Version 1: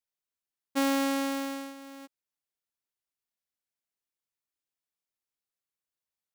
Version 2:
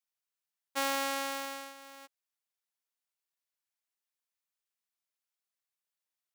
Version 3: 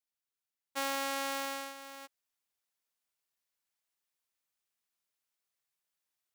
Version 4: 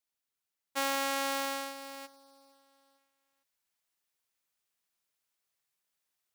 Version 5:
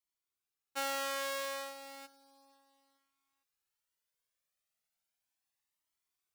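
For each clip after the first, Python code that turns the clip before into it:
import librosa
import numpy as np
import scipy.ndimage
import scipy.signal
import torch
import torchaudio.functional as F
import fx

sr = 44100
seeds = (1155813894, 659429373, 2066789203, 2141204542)

y1 = scipy.signal.sosfilt(scipy.signal.butter(2, 660.0, 'highpass', fs=sr, output='sos'), x)
y2 = fx.rider(y1, sr, range_db=3, speed_s=0.5)
y3 = fx.echo_feedback(y2, sr, ms=456, feedback_pct=48, wet_db=-23.5)
y3 = y3 * librosa.db_to_amplitude(3.0)
y4 = fx.comb_cascade(y3, sr, direction='rising', hz=0.34)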